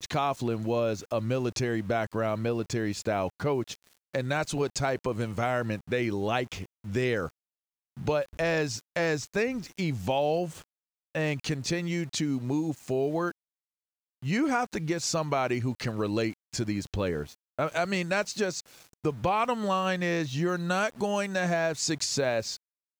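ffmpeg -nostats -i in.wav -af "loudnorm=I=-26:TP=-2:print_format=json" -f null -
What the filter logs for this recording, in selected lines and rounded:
"input_i" : "-29.5",
"input_tp" : "-13.5",
"input_lra" : "2.1",
"input_thresh" : "-39.7",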